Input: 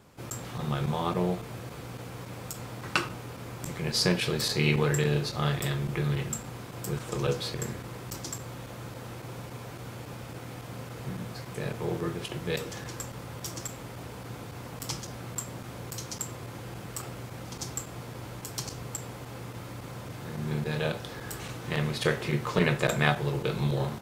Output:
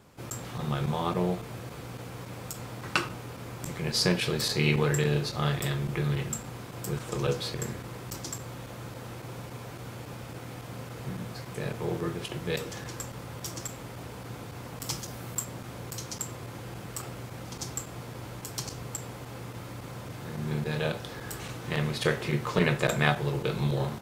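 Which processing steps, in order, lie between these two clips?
14.86–15.45 high shelf 11000 Hz +10 dB

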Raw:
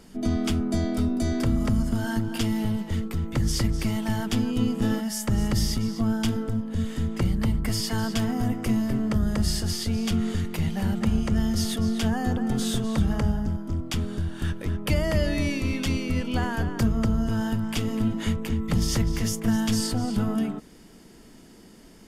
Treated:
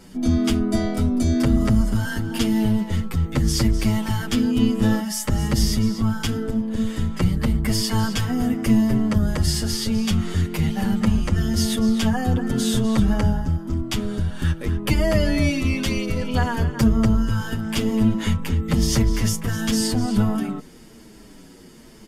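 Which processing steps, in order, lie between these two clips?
notch 690 Hz, Q 21; endless flanger 7.8 ms -0.98 Hz; gain +7.5 dB

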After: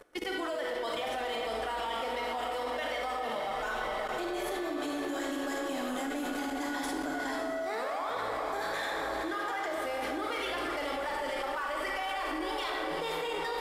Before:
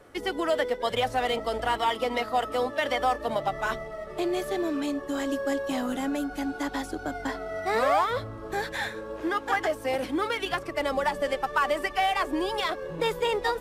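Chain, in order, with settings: bell 96 Hz -14.5 dB 1.5 oct; diffused feedback echo 0.487 s, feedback 61%, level -8 dB; reverse; upward compressor, threshold -32 dBFS; reverse; high shelf 4400 Hz +2.5 dB; on a send at -1 dB: reverb RT60 1.1 s, pre-delay 32 ms; on the sum: level quantiser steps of 17 dB

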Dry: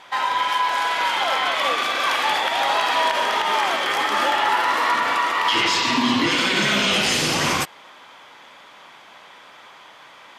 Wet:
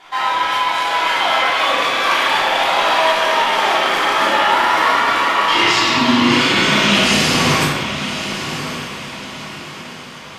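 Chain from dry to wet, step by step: diffused feedback echo 1.095 s, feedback 42%, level -9.5 dB; shoebox room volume 570 m³, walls mixed, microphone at 3.2 m; gain -2.5 dB

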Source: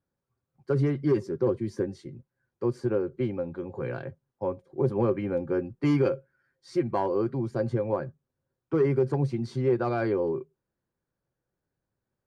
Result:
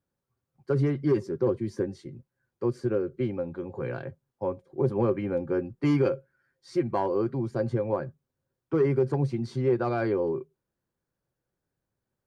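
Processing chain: 2.69–3.26 bell 890 Hz -8.5 dB 0.37 oct

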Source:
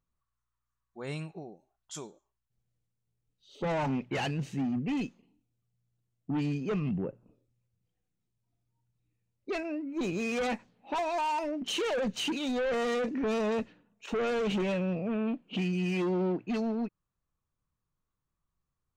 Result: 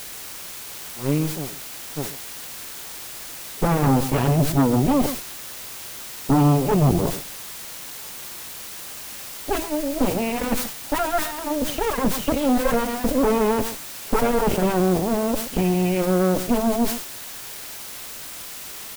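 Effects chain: tilt -4 dB/oct; comb 7.2 ms, depth 53%; added harmonics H 6 -9 dB, 7 -32 dB, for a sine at -11 dBFS; requantised 6-bit, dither triangular; on a send: echo 0.129 s -16 dB; on the sum: sustainer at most 85 dB/s

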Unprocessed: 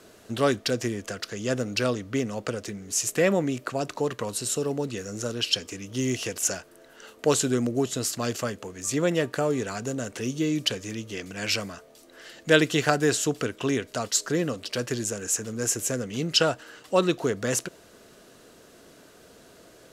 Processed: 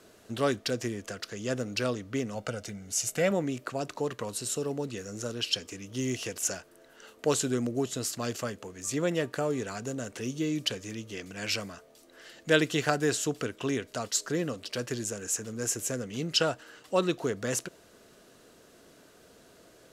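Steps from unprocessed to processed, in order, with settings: 2.35–3.31 comb 1.4 ms, depth 50%; gain -4.5 dB

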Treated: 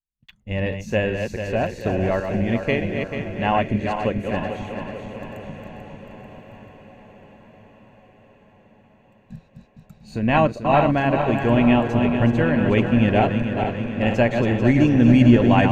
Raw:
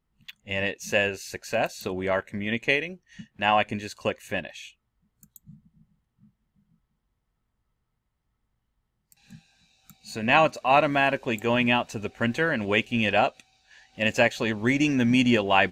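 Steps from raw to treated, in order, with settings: regenerating reverse delay 0.22 s, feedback 74%, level -6 dB; gate -55 dBFS, range -35 dB; tilt -3.5 dB/oct; on a send: diffused feedback echo 1.076 s, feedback 53%, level -14.5 dB

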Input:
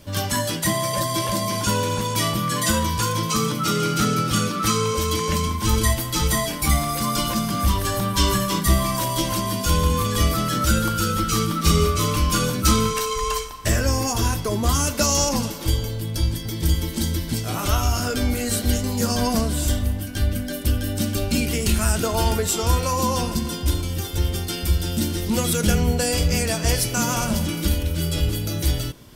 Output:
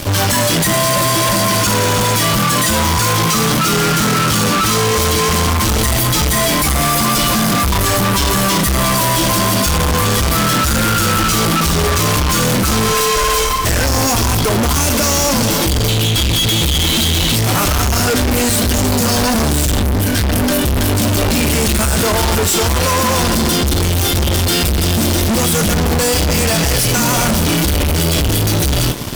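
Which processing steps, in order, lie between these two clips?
15.88–17.36 band shelf 3100 Hz +13 dB 1 oct; in parallel at -2 dB: negative-ratio compressor -22 dBFS; on the sum: fuzz box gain 36 dB, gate -43 dBFS

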